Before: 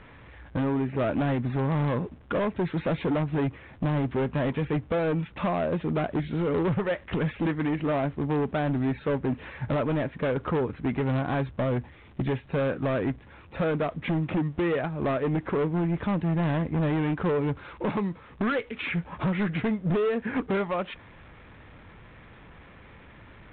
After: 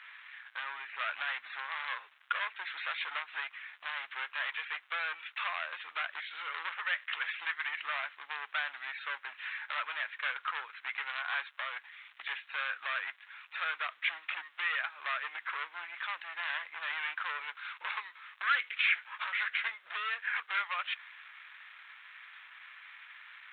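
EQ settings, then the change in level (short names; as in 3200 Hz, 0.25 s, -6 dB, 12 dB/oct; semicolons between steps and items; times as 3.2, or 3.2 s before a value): HPF 1400 Hz 24 dB/oct; +5.0 dB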